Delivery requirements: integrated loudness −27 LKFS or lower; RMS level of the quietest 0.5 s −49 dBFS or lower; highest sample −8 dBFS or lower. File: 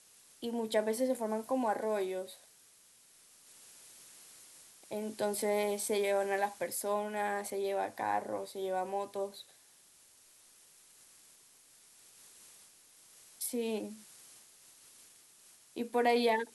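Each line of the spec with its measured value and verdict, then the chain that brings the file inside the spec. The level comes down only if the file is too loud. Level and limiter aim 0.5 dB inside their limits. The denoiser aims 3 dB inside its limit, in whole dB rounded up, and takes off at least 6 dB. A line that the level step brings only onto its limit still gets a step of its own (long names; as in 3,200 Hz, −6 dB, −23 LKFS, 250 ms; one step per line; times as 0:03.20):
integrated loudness −34.5 LKFS: in spec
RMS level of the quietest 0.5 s −62 dBFS: in spec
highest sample −17.5 dBFS: in spec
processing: no processing needed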